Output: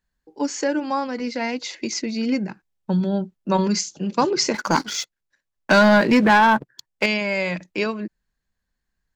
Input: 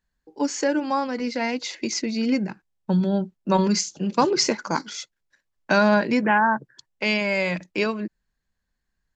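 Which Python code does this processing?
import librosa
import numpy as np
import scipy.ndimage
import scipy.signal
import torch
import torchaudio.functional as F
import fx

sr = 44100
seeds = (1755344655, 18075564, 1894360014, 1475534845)

y = fx.leveller(x, sr, passes=2, at=(4.54, 7.06))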